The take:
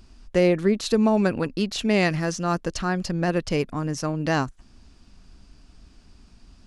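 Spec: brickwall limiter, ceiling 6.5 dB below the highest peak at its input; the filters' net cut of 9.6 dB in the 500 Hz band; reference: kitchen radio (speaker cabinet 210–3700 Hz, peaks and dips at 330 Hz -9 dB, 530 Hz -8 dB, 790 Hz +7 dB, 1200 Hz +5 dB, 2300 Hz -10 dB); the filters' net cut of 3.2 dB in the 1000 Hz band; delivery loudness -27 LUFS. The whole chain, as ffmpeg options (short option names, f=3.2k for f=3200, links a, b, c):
-af "equalizer=f=500:t=o:g=-4.5,equalizer=f=1k:t=o:g=-8,alimiter=limit=-16dB:level=0:latency=1,highpass=210,equalizer=f=330:t=q:w=4:g=-9,equalizer=f=530:t=q:w=4:g=-8,equalizer=f=790:t=q:w=4:g=7,equalizer=f=1.2k:t=q:w=4:g=5,equalizer=f=2.3k:t=q:w=4:g=-10,lowpass=f=3.7k:w=0.5412,lowpass=f=3.7k:w=1.3066,volume=5dB"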